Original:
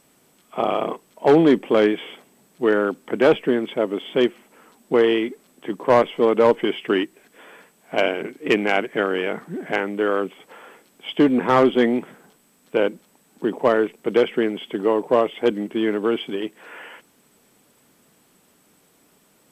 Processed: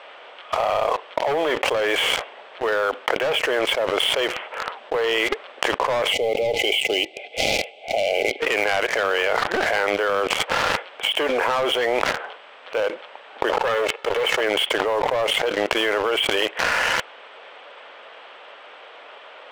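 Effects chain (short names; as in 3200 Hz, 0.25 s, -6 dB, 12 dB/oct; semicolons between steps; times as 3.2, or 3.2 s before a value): 13.49–14.41 minimum comb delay 2.3 ms; elliptic band-pass 540–3200 Hz, stop band 80 dB; sample leveller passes 3; 6.13–8.4 spectral gain 850–2000 Hz -27 dB; fast leveller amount 100%; gain -12 dB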